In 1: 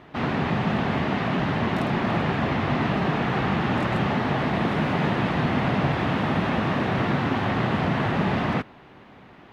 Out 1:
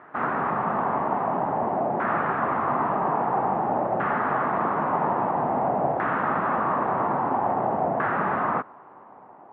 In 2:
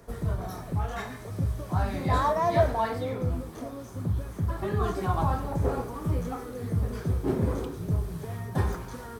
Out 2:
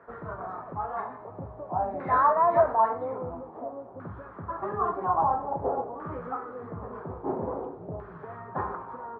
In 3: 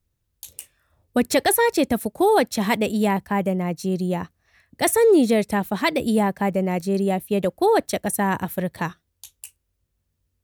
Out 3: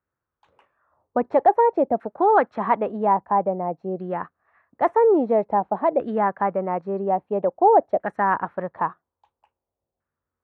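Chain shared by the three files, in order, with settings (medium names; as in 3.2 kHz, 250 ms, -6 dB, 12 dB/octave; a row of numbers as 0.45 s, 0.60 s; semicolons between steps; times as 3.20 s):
LFO low-pass saw down 0.5 Hz 700–1500 Hz; band-pass filter 1 kHz, Q 0.55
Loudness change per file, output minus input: -0.5 LU, +0.5 LU, -0.5 LU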